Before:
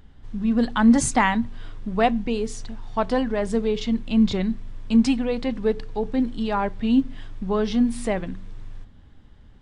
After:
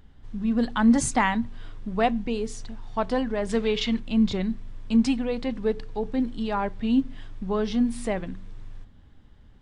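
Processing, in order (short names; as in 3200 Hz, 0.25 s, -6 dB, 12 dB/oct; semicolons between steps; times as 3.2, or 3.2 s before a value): 3.49–4 bell 2400 Hz +10 dB 2.7 oct; gain -3 dB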